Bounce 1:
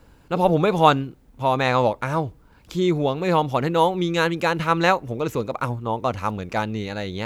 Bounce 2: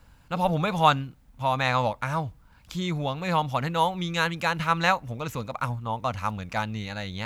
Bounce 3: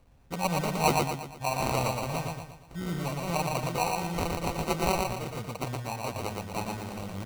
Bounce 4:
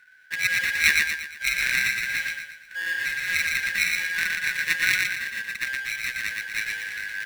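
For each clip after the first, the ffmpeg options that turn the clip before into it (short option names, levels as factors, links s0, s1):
-af "equalizer=f=380:t=o:w=0.92:g=-15,volume=0.841"
-af "acrusher=samples=26:mix=1:aa=0.000001,aecho=1:1:117|234|351|468|585|702:0.708|0.319|0.143|0.0645|0.029|0.0131,volume=0.501"
-af "afftfilt=real='real(if(lt(b,272),68*(eq(floor(b/68),0)*3+eq(floor(b/68),1)*0+eq(floor(b/68),2)*1+eq(floor(b/68),3)*2)+mod(b,68),b),0)':imag='imag(if(lt(b,272),68*(eq(floor(b/68),0)*3+eq(floor(b/68),1)*0+eq(floor(b/68),2)*1+eq(floor(b/68),3)*2)+mod(b,68),b),0)':win_size=2048:overlap=0.75,volume=1.68" -ar 44100 -c:a aac -b:a 128k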